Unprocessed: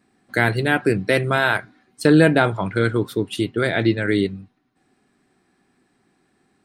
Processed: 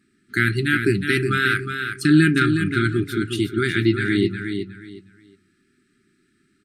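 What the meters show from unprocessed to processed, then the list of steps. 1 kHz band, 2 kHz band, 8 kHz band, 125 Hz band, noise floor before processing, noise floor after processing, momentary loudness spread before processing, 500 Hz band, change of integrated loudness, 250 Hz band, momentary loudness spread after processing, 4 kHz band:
−4.0 dB, +1.0 dB, +1.0 dB, +0.5 dB, −66 dBFS, −66 dBFS, 10 LU, −5.0 dB, −0.5 dB, +1.0 dB, 11 LU, +1.0 dB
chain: brick-wall band-stop 410–1,200 Hz
repeating echo 363 ms, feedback 24%, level −7 dB
AC-3 320 kbit/s 32,000 Hz

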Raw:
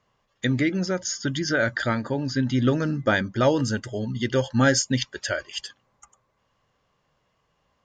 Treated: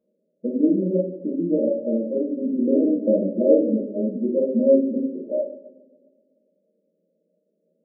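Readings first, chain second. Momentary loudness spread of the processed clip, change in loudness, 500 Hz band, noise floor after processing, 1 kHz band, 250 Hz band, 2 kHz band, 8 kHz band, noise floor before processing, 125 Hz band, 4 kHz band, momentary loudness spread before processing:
9 LU, +2.5 dB, +6.0 dB, −73 dBFS, below −20 dB, +4.5 dB, below −40 dB, below −40 dB, −71 dBFS, can't be measured, below −40 dB, 9 LU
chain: brick-wall band-pass 170–640 Hz
coupled-rooms reverb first 0.76 s, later 2.2 s, DRR −7 dB
level −3 dB

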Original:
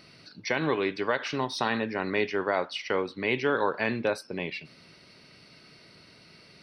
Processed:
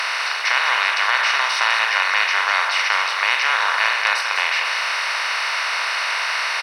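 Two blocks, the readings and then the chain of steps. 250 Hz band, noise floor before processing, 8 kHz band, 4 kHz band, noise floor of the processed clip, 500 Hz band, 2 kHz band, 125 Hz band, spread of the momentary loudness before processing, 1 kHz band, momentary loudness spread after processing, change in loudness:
below −25 dB, −55 dBFS, +18.0 dB, +17.5 dB, −23 dBFS, −6.0 dB, +16.5 dB, below −40 dB, 7 LU, +13.0 dB, 4 LU, +11.0 dB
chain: compressor on every frequency bin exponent 0.2
high-pass filter 990 Hz 24 dB per octave
single-tap delay 203 ms −7.5 dB
level +5 dB

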